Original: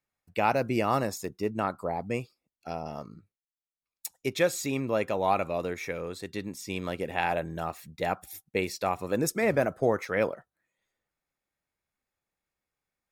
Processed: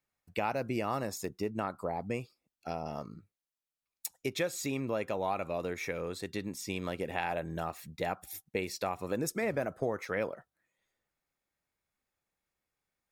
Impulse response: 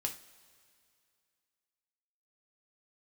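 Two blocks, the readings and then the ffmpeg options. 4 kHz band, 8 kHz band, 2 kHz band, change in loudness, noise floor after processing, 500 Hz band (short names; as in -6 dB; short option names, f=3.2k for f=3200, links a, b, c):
-3.5 dB, -3.5 dB, -5.5 dB, -5.5 dB, under -85 dBFS, -6.0 dB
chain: -af "acompressor=threshold=-32dB:ratio=2.5"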